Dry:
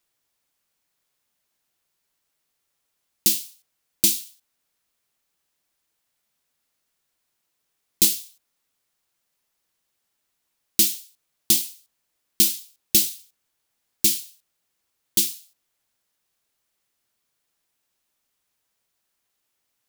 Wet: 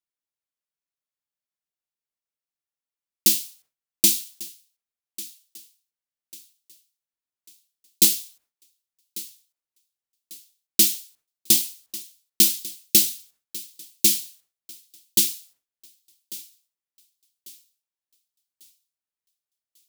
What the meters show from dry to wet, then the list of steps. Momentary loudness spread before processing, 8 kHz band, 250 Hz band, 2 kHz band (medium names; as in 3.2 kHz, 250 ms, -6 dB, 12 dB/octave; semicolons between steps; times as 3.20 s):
10 LU, +1.5 dB, +1.0 dB, +1.5 dB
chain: gate with hold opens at -49 dBFS; on a send: thinning echo 1145 ms, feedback 38%, high-pass 260 Hz, level -18 dB; on the sum: trim +1.5 dB